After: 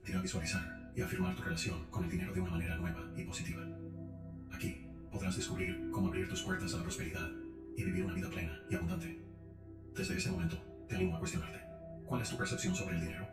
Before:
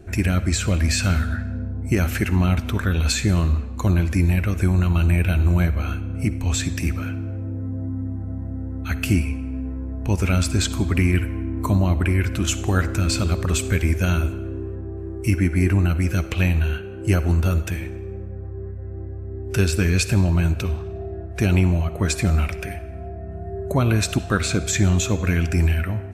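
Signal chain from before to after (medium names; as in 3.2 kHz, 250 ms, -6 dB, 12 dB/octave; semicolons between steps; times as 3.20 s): chord resonator B2 sus4, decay 0.41 s; spring tank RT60 1.7 s, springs 42/47 ms, chirp 80 ms, DRR 13.5 dB; plain phase-vocoder stretch 0.51×; trim +3 dB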